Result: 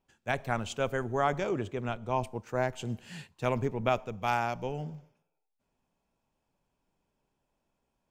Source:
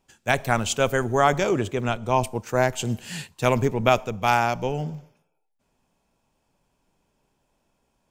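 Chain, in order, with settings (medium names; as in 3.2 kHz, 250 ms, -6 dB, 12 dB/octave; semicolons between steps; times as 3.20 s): treble shelf 4.8 kHz -11 dB, from 4.09 s -5.5 dB; trim -8.5 dB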